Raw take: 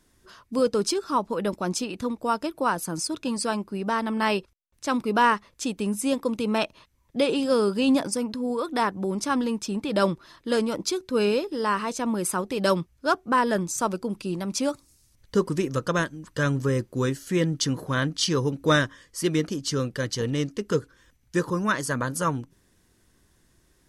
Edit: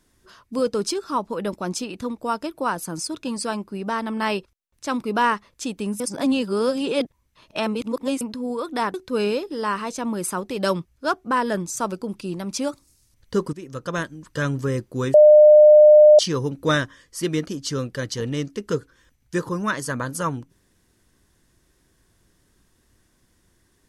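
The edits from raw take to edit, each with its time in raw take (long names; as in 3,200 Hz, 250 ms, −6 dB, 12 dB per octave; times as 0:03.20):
0:06.00–0:08.21: reverse
0:08.94–0:10.95: remove
0:15.54–0:16.11: fade in, from −17 dB
0:17.15–0:18.20: beep over 604 Hz −6.5 dBFS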